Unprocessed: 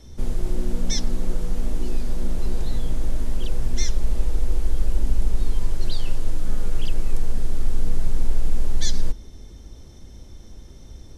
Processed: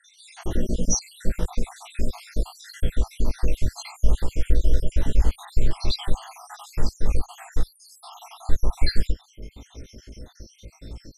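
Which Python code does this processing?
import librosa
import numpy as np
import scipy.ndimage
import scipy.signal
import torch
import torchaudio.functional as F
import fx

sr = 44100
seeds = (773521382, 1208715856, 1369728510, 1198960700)

y = fx.spec_dropout(x, sr, seeds[0], share_pct=75)
y = fx.lowpass(y, sr, hz=3000.0, slope=6)
y = fx.tilt_eq(y, sr, slope=1.5)
y = fx.doubler(y, sr, ms=18.0, db=-3.0)
y = y * librosa.db_to_amplitude(8.5)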